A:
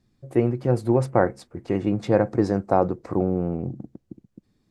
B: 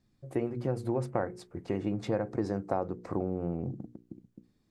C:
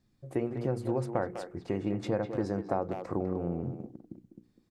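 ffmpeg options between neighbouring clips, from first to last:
-af "bandreject=f=60:t=h:w=6,bandreject=f=120:t=h:w=6,bandreject=f=180:t=h:w=6,bandreject=f=240:t=h:w=6,bandreject=f=300:t=h:w=6,bandreject=f=360:t=h:w=6,bandreject=f=420:t=h:w=6,bandreject=f=480:t=h:w=6,acompressor=threshold=-24dB:ratio=3,volume=-4dB"
-filter_complex "[0:a]asplit=2[a][b];[b]adelay=200,highpass=300,lowpass=3.4k,asoftclip=type=hard:threshold=-23.5dB,volume=-7dB[c];[a][c]amix=inputs=2:normalize=0"

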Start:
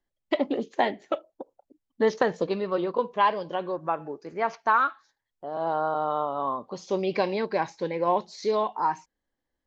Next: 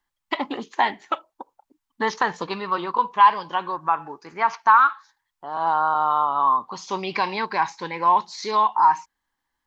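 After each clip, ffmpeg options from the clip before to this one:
-filter_complex "[0:a]lowshelf=f=740:t=q:w=3:g=-8,asplit=2[a][b];[b]alimiter=limit=-19dB:level=0:latency=1:release=58,volume=2dB[c];[a][c]amix=inputs=2:normalize=0"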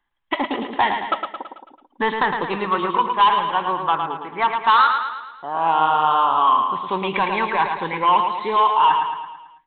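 -af "aresample=8000,asoftclip=type=tanh:threshold=-15dB,aresample=44100,aecho=1:1:110|220|330|440|550|660:0.501|0.261|0.136|0.0705|0.0366|0.0191,volume=4.5dB"

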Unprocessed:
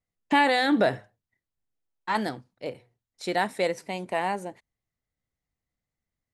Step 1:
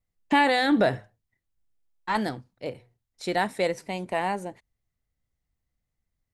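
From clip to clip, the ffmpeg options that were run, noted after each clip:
-af "lowshelf=f=89:g=12"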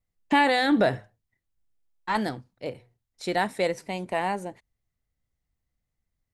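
-af anull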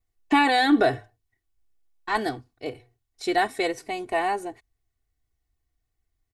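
-af "aecho=1:1:2.7:0.83"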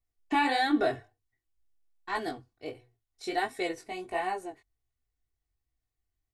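-af "flanger=delay=16:depth=6.4:speed=1.4,volume=-4dB"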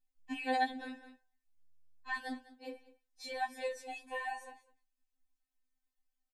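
-af "aecho=1:1:202:0.106,acompressor=threshold=-30dB:ratio=6,afftfilt=real='re*3.46*eq(mod(b,12),0)':imag='im*3.46*eq(mod(b,12),0)':win_size=2048:overlap=0.75,volume=-1dB"

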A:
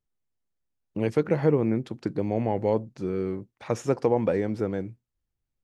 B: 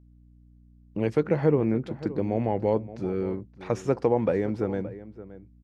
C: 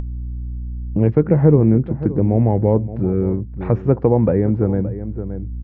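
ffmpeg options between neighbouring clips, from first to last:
-filter_complex "[0:a]highshelf=f=5.9k:g=-8.5,aeval=exprs='val(0)+0.00224*(sin(2*PI*60*n/s)+sin(2*PI*2*60*n/s)/2+sin(2*PI*3*60*n/s)/3+sin(2*PI*4*60*n/s)/4+sin(2*PI*5*60*n/s)/5)':c=same,asplit=2[a][b];[b]adelay=571.4,volume=-15dB,highshelf=f=4k:g=-12.9[c];[a][c]amix=inputs=2:normalize=0"
-af "lowpass=2.1k,aemphasis=mode=reproduction:type=riaa,acompressor=mode=upward:threshold=-20dB:ratio=2.5,volume=3.5dB"

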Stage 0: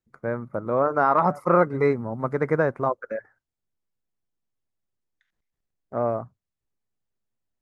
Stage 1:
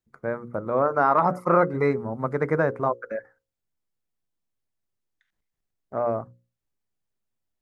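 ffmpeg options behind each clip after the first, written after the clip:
-af "bandreject=f=60:t=h:w=6,bandreject=f=120:t=h:w=6,bandreject=f=180:t=h:w=6,bandreject=f=240:t=h:w=6,bandreject=f=300:t=h:w=6,bandreject=f=360:t=h:w=6,bandreject=f=420:t=h:w=6,bandreject=f=480:t=h:w=6,bandreject=f=540:t=h:w=6"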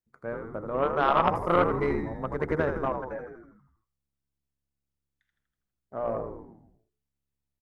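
-filter_complex "[0:a]asplit=9[a][b][c][d][e][f][g][h][i];[b]adelay=81,afreqshift=-69,volume=-5dB[j];[c]adelay=162,afreqshift=-138,volume=-9.6dB[k];[d]adelay=243,afreqshift=-207,volume=-14.2dB[l];[e]adelay=324,afreqshift=-276,volume=-18.7dB[m];[f]adelay=405,afreqshift=-345,volume=-23.3dB[n];[g]adelay=486,afreqshift=-414,volume=-27.9dB[o];[h]adelay=567,afreqshift=-483,volume=-32.5dB[p];[i]adelay=648,afreqshift=-552,volume=-37.1dB[q];[a][j][k][l][m][n][o][p][q]amix=inputs=9:normalize=0,aeval=exprs='0.562*(cos(1*acos(clip(val(0)/0.562,-1,1)))-cos(1*PI/2))+0.1*(cos(3*acos(clip(val(0)/0.562,-1,1)))-cos(3*PI/2))+0.02*(cos(4*acos(clip(val(0)/0.562,-1,1)))-cos(4*PI/2))':c=same"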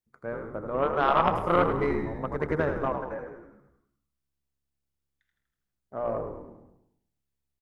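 -af "aecho=1:1:104|208|312|416|520:0.224|0.112|0.056|0.028|0.014"

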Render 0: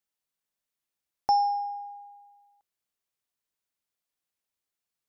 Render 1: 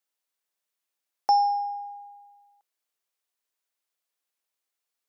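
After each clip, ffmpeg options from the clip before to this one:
-af "highpass=360,volume=2.5dB"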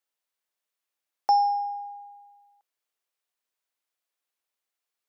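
-af "bass=f=250:g=-6,treble=f=4k:g=-3"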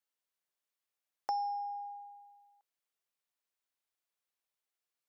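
-af "acompressor=threshold=-34dB:ratio=2,volume=-5dB"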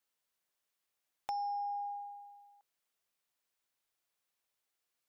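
-af "acompressor=threshold=-40dB:ratio=4,asoftclip=type=hard:threshold=-34dB,volume=4.5dB"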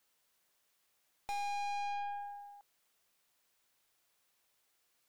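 -af "aeval=exprs='(tanh(251*val(0)+0.45)-tanh(0.45))/251':c=same,volume=11dB"

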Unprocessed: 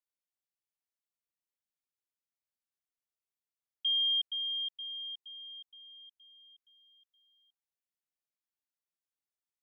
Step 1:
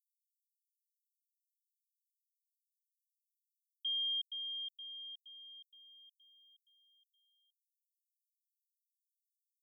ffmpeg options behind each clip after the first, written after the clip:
-af "aderivative"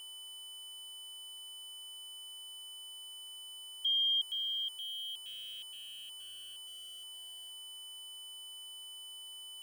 -af "aeval=exprs='val(0)+0.00316*sin(2*PI*3000*n/s)':c=same,aeval=exprs='val(0)*gte(abs(val(0)),0.00224)':c=same,volume=5.5dB"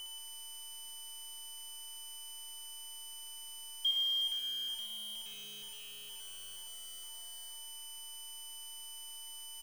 -filter_complex "[0:a]acrusher=bits=9:dc=4:mix=0:aa=0.000001,asplit=2[a][b];[b]aecho=0:1:61.22|113.7|180.8:0.562|0.282|0.398[c];[a][c]amix=inputs=2:normalize=0,volume=1dB"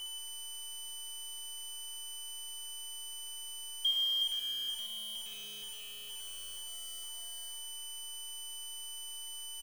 -filter_complex "[0:a]asplit=2[a][b];[b]adelay=16,volume=-8.5dB[c];[a][c]amix=inputs=2:normalize=0,volume=1.5dB"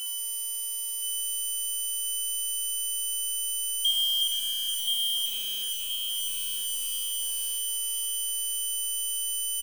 -filter_complex "[0:a]asplit=2[a][b];[b]adelay=1024,lowpass=f=3.8k:p=1,volume=-3dB,asplit=2[c][d];[d]adelay=1024,lowpass=f=3.8k:p=1,volume=0.48,asplit=2[e][f];[f]adelay=1024,lowpass=f=3.8k:p=1,volume=0.48,asplit=2[g][h];[h]adelay=1024,lowpass=f=3.8k:p=1,volume=0.48,asplit=2[i][j];[j]adelay=1024,lowpass=f=3.8k:p=1,volume=0.48,asplit=2[k][l];[l]adelay=1024,lowpass=f=3.8k:p=1,volume=0.48[m];[c][e][g][i][k][m]amix=inputs=6:normalize=0[n];[a][n]amix=inputs=2:normalize=0,crystalizer=i=3.5:c=0,volume=-1dB"

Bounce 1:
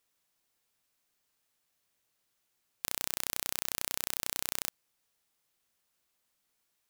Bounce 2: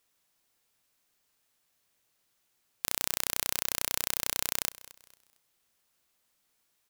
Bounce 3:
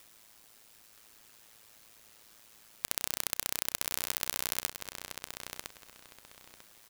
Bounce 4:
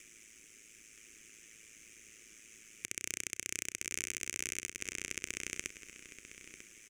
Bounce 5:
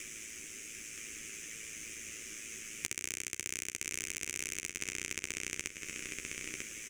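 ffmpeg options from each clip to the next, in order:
-af "aecho=1:1:227|454|681:0.112|0.037|0.0122,volume=3.5dB"
-filter_complex "[0:a]acompressor=mode=upward:threshold=-39dB:ratio=2.5,asplit=2[a][b];[b]adelay=977,lowpass=f=4.7k:p=1,volume=-4.5dB,asplit=2[c][d];[d]adelay=977,lowpass=f=4.7k:p=1,volume=0.25,asplit=2[e][f];[f]adelay=977,lowpass=f=4.7k:p=1,volume=0.25[g];[a][c][e][g]amix=inputs=4:normalize=0,aeval=exprs='val(0)*sin(2*PI*55*n/s)':c=same"
-af "equalizer=f=110:w=4.4:g=-8,alimiter=limit=-9dB:level=0:latency=1:release=216,firequalizer=gain_entry='entry(170,0);entry(360,4);entry(590,-12);entry(850,-26);entry(1200,-11);entry(2300,8);entry(4200,-15);entry(6200,7);entry(15000,-20)':delay=0.05:min_phase=1,volume=3dB"
-filter_complex "[0:a]acompressor=threshold=-44dB:ratio=6,asplit=2[a][b];[b]adelay=13,volume=-6dB[c];[a][c]amix=inputs=2:normalize=0,volume=10.5dB"

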